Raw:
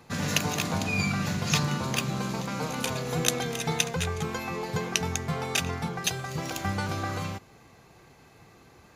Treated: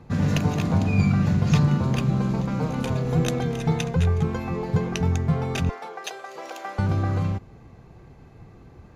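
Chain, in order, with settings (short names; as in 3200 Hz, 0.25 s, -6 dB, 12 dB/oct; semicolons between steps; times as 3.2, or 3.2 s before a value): 5.69–6.79 HPF 460 Hz 24 dB/oct; tilt -3.5 dB/oct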